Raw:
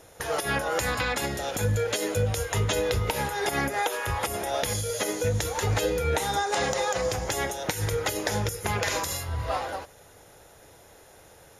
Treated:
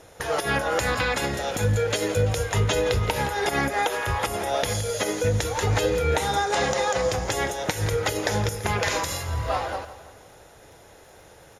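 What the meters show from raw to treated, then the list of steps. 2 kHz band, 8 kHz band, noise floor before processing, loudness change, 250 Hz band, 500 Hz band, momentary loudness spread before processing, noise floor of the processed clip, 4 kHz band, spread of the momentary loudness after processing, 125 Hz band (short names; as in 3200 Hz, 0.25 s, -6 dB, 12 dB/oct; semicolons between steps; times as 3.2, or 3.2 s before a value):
+3.0 dB, +0.5 dB, -53 dBFS, +2.5 dB, +3.0 dB, +3.5 dB, 4 LU, -50 dBFS, +2.5 dB, 4 LU, +3.0 dB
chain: high shelf 11000 Hz -11 dB; crackle 13/s -47 dBFS; feedback echo 0.168 s, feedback 48%, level -14.5 dB; gain +3 dB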